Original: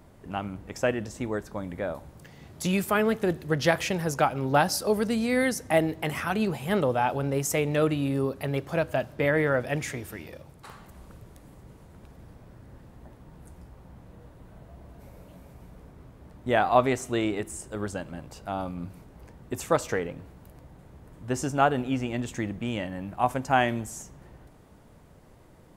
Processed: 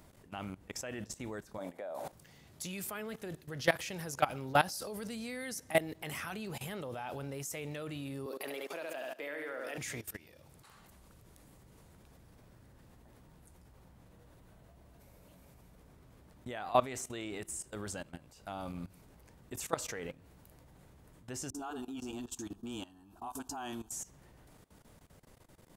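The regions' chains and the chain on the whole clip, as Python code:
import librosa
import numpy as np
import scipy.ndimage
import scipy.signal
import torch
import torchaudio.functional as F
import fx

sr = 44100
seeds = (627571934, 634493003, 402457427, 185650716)

y = fx.chain(x, sr, fx.highpass(hz=240.0, slope=12),
    fx.peak_eq(hz=670.0, db=12.5, octaves=0.92),
    fx.sustainer(db_per_s=91.0), at=(1.58, 2.12))
y = fx.chain(y, sr, fx.highpass(hz=280.0, slope=24),
    fx.room_flutter(wall_m=11.9, rt60_s=0.68), at=(8.26, 9.78))
y = fx.chain(y, sr, fx.fixed_phaser(hz=550.0, stages=6),
    fx.dispersion(late='highs', ms=45.0, hz=500.0), at=(21.5, 23.92))
y = fx.high_shelf(y, sr, hz=2200.0, db=9.5)
y = fx.level_steps(y, sr, step_db=18)
y = y * librosa.db_to_amplitude(-5.0)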